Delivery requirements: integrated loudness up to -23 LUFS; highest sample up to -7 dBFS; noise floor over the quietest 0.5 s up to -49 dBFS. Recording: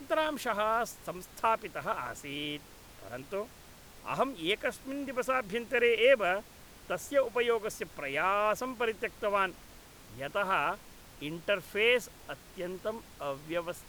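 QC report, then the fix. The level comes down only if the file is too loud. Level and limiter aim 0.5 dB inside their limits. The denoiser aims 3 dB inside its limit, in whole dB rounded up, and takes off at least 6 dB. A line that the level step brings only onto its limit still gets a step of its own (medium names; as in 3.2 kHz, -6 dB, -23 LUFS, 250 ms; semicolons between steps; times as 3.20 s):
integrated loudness -31.5 LUFS: pass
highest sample -12.5 dBFS: pass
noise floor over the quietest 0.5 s -53 dBFS: pass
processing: none needed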